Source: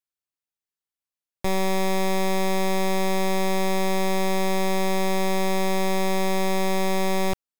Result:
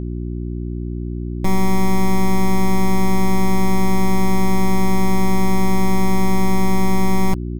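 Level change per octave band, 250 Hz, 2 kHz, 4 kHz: +9.0 dB, +1.5 dB, -2.0 dB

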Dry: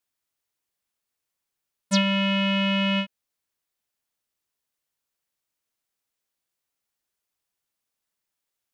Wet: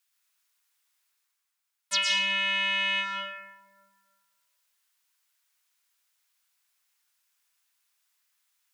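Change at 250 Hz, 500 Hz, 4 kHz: -25.5 dB, -13.5 dB, 0.0 dB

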